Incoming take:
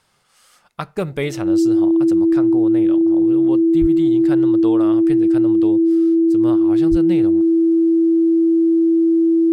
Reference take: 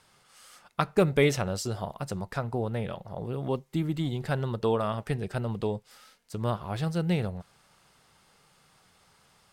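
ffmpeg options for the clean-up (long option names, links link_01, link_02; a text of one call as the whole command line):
ffmpeg -i in.wav -filter_complex "[0:a]bandreject=frequency=330:width=30,asplit=3[link_01][link_02][link_03];[link_01]afade=type=out:start_time=3.8:duration=0.02[link_04];[link_02]highpass=frequency=140:width=0.5412,highpass=frequency=140:width=1.3066,afade=type=in:start_time=3.8:duration=0.02,afade=type=out:start_time=3.92:duration=0.02[link_05];[link_03]afade=type=in:start_time=3.92:duration=0.02[link_06];[link_04][link_05][link_06]amix=inputs=3:normalize=0,asplit=3[link_07][link_08][link_09];[link_07]afade=type=out:start_time=6.9:duration=0.02[link_10];[link_08]highpass=frequency=140:width=0.5412,highpass=frequency=140:width=1.3066,afade=type=in:start_time=6.9:duration=0.02,afade=type=out:start_time=7.02:duration=0.02[link_11];[link_09]afade=type=in:start_time=7.02:duration=0.02[link_12];[link_10][link_11][link_12]amix=inputs=3:normalize=0" out.wav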